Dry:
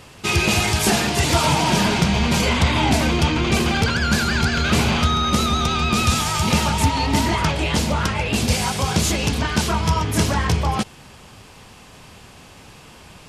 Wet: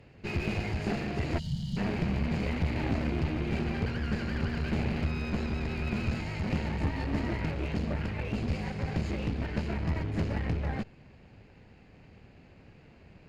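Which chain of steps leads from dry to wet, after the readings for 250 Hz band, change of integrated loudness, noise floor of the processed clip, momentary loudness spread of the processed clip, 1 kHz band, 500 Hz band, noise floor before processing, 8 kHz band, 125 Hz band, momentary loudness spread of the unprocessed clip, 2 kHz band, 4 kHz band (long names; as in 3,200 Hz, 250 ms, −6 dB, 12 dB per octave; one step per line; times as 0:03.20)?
−10.5 dB, −13.5 dB, −56 dBFS, 3 LU, −19.5 dB, −12.0 dB, −45 dBFS, −31.5 dB, −10.0 dB, 3 LU, −16.0 dB, −23.0 dB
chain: lower of the sound and its delayed copy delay 0.43 ms
head-to-tape spacing loss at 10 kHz 34 dB
asymmetric clip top −25.5 dBFS
gain on a spectral selection 0:01.39–0:01.77, 220–2,800 Hz −26 dB
level −7 dB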